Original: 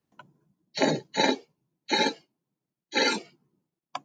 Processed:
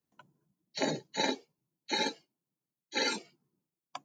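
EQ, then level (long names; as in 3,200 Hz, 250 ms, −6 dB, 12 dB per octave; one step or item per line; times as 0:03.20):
high-shelf EQ 6,400 Hz +8.5 dB
−8.0 dB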